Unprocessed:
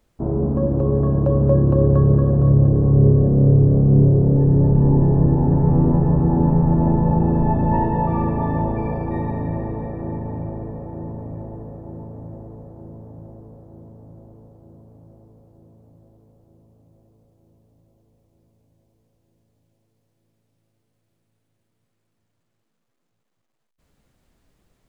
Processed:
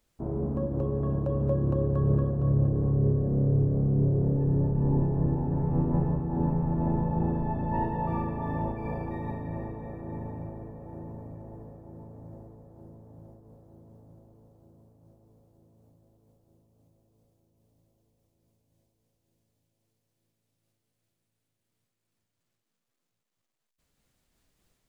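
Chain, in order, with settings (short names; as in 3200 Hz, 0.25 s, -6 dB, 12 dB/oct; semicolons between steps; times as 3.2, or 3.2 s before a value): high shelf 2100 Hz +9 dB; noise-modulated level, depth 55%; gain -8 dB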